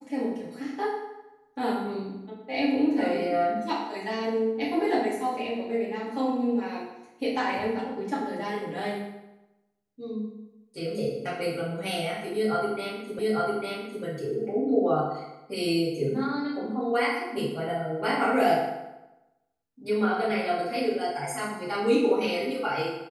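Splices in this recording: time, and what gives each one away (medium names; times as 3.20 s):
13.19 s: repeat of the last 0.85 s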